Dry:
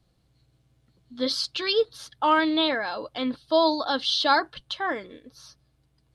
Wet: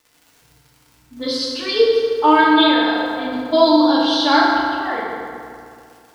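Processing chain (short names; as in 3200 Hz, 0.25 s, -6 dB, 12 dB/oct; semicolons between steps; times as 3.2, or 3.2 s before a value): low-pass opened by the level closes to 400 Hz, open at -22 dBFS; gate with hold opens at -56 dBFS; crackle 140/s -41 dBFS; in parallel at -2 dB: level quantiser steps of 22 dB; on the sum: FDN reverb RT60 2.4 s, low-frequency decay 1×, high-frequency decay 0.6×, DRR -6 dB; gain -2 dB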